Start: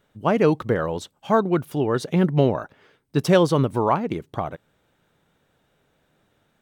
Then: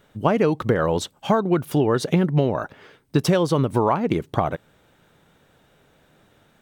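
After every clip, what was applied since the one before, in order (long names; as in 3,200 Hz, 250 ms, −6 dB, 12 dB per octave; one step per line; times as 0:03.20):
downward compressor 10 to 1, threshold −23 dBFS, peak gain reduction 12.5 dB
level +8 dB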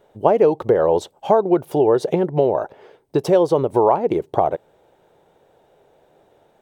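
flat-topped bell 570 Hz +12.5 dB
level −6 dB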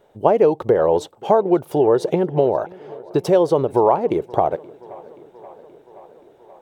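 tape delay 527 ms, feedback 75%, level −22 dB, low-pass 4,800 Hz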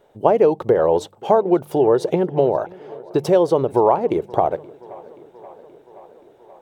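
hum removal 49.57 Hz, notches 4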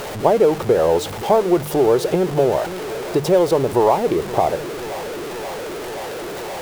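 converter with a step at zero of −22.5 dBFS
level −1 dB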